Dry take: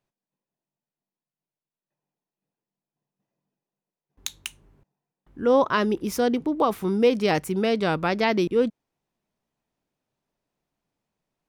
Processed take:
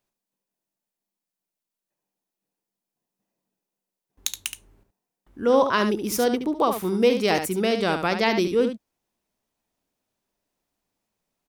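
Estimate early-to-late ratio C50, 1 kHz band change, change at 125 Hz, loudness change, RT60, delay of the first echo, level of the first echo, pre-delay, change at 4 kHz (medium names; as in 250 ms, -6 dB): no reverb, +1.0 dB, -1.5 dB, 0.0 dB, no reverb, 72 ms, -8.0 dB, no reverb, +3.5 dB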